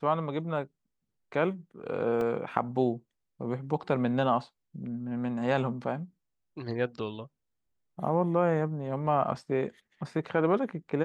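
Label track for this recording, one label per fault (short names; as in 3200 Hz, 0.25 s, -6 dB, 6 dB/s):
2.210000	2.210000	gap 2.1 ms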